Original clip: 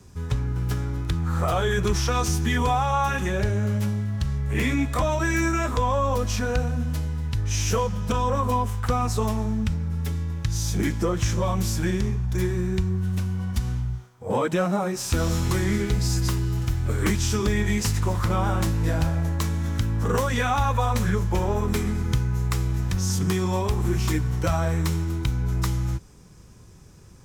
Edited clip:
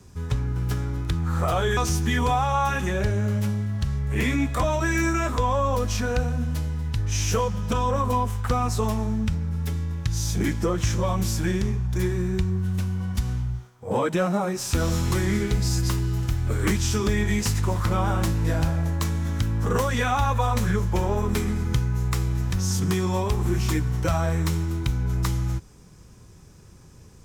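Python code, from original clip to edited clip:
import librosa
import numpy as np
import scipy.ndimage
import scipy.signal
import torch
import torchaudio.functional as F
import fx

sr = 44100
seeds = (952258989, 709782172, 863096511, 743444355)

y = fx.edit(x, sr, fx.cut(start_s=1.77, length_s=0.39), tone=tone)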